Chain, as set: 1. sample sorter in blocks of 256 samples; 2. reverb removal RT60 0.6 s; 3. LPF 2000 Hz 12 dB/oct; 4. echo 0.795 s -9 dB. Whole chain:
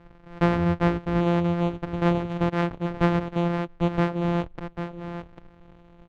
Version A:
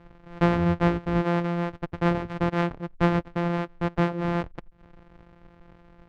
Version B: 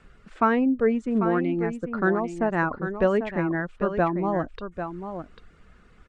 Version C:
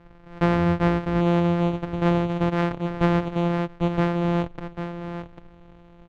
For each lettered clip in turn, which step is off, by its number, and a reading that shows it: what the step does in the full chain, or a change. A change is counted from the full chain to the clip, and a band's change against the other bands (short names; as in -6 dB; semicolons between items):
4, momentary loudness spread change -5 LU; 1, 125 Hz band -10.0 dB; 2, loudness change +1.5 LU